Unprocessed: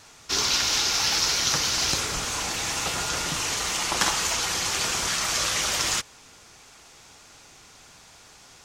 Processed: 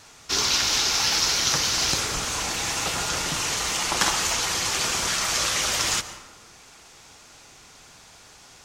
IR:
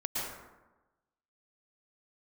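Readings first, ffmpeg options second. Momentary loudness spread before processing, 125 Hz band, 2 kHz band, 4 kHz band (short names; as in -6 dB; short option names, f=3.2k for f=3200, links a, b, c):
6 LU, +1.5 dB, +1.0 dB, +1.0 dB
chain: -filter_complex "[0:a]asplit=2[a][b];[1:a]atrim=start_sample=2205,asetrate=41013,aresample=44100[c];[b][c]afir=irnorm=-1:irlink=0,volume=-16.5dB[d];[a][d]amix=inputs=2:normalize=0"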